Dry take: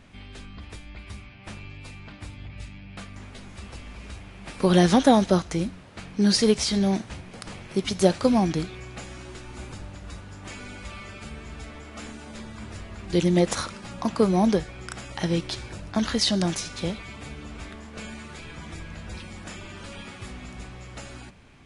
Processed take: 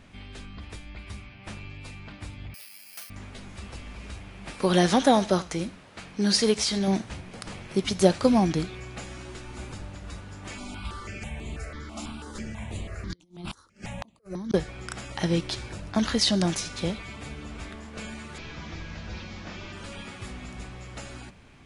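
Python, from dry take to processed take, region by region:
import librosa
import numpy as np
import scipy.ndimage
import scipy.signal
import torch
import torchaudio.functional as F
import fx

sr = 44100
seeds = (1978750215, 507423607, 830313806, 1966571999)

y = fx.chain(x, sr, fx.highpass(hz=870.0, slope=12),
    fx.dynamic_eq(hz=1100.0, q=0.72, threshold_db=-59.0, ratio=4.0, max_db=-7),
    fx.resample_bad(factor=6, down='filtered', up='zero_stuff'), at=(2.54, 3.1))
y = fx.chain(y, sr, fx.low_shelf(hz=290.0, db=-7.0),
    fx.echo_single(ms=84, db=-20.5), at=(4.55, 6.88))
y = fx.chain(y, sr, fx.over_compress(threshold_db=-25.0, ratio=-0.5),
    fx.gate_flip(shuts_db=-18.0, range_db=-30),
    fx.phaser_held(hz=6.1, low_hz=460.0, high_hz=5300.0), at=(10.58, 14.54))
y = fx.chain(y, sr, fx.delta_mod(bps=32000, step_db=-48.0),
    fx.high_shelf(hz=4000.0, db=5.0), at=(18.38, 19.73))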